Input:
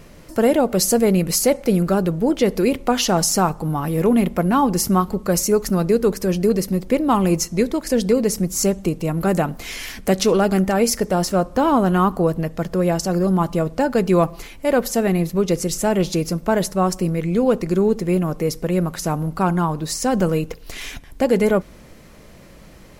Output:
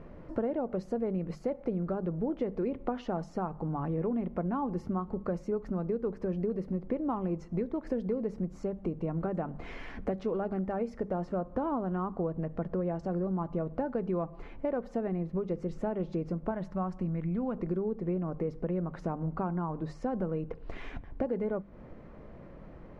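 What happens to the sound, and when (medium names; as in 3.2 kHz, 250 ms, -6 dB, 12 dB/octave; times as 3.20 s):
16.51–17.58 s: peaking EQ 440 Hz -11 dB
whole clip: compression, threshold -26 dBFS; low-pass 1.2 kHz 12 dB/octave; hum notches 50/100/150/200 Hz; trim -3 dB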